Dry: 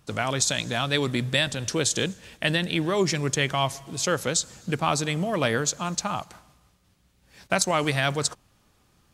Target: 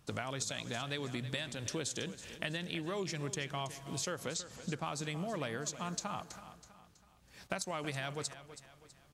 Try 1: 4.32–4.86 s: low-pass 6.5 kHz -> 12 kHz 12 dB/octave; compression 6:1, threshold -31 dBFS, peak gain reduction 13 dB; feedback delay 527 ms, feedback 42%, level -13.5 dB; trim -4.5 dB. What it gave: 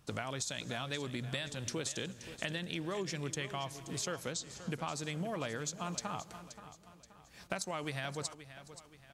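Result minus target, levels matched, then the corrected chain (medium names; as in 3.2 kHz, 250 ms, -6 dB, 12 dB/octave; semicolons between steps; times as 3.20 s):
echo 202 ms late
4.32–4.86 s: low-pass 6.5 kHz -> 12 kHz 12 dB/octave; compression 6:1, threshold -31 dBFS, peak gain reduction 13 dB; feedback delay 325 ms, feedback 42%, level -13.5 dB; trim -4.5 dB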